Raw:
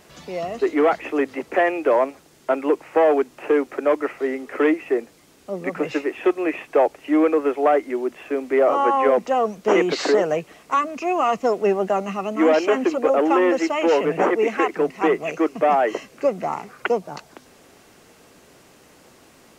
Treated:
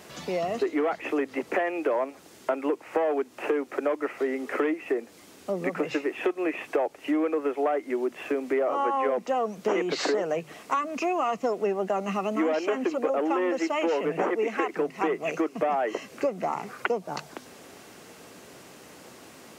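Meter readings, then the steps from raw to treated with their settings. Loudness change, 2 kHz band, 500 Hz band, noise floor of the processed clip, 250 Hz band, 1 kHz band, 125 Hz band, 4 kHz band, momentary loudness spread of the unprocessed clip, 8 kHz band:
−7.0 dB, −6.0 dB, −7.5 dB, −51 dBFS, −6.5 dB, −7.0 dB, −4.5 dB, −4.5 dB, 9 LU, can't be measured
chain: high-pass filter 85 Hz
mains-hum notches 50/100/150 Hz
downward compressor 4 to 1, threshold −28 dBFS, peak gain reduction 13 dB
level +3 dB

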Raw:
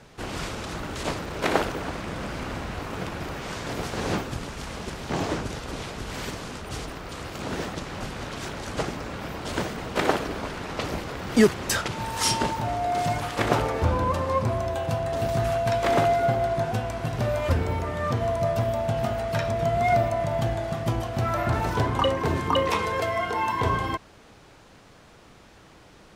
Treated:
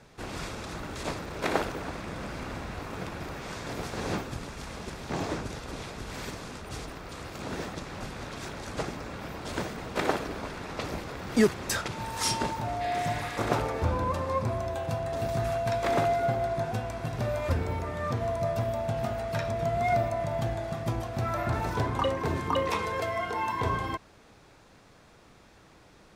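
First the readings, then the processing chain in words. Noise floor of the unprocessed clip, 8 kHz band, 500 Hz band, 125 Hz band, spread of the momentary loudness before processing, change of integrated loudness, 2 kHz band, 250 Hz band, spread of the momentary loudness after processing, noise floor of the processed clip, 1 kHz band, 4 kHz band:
−51 dBFS, −4.5 dB, −4.5 dB, −4.5 dB, 11 LU, −4.5 dB, −4.5 dB, −4.5 dB, 11 LU, −56 dBFS, −4.5 dB, −5.5 dB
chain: healed spectral selection 0:12.84–0:13.44, 1,600–5,200 Hz after
notch filter 3,000 Hz, Q 16
level −4.5 dB

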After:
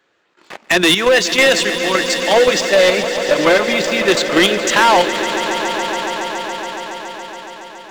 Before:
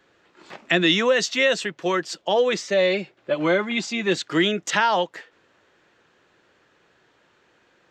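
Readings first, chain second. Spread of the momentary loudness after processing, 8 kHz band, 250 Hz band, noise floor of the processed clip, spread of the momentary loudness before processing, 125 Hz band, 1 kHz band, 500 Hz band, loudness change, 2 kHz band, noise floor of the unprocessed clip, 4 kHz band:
16 LU, +12.0 dB, +6.0 dB, −53 dBFS, 7 LU, +3.5 dB, +10.0 dB, +8.5 dB, +7.5 dB, +9.0 dB, −62 dBFS, +9.5 dB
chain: low-shelf EQ 220 Hz −10.5 dB
output level in coarse steps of 11 dB
leveller curve on the samples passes 2
gain into a clipping stage and back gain 15 dB
on a send: echo that builds up and dies away 140 ms, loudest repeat 5, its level −13.5 dB
on the sum: level +7 dB

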